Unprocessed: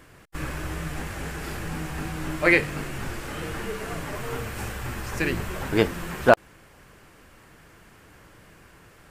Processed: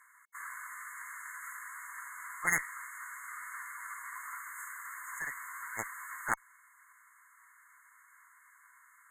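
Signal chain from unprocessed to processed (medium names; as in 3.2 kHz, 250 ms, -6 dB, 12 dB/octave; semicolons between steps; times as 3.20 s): brick-wall FIR high-pass 950 Hz; Chebyshev shaper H 4 -24 dB, 7 -9 dB, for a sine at -6 dBFS; FFT band-reject 2.2–6.4 kHz; trim -8 dB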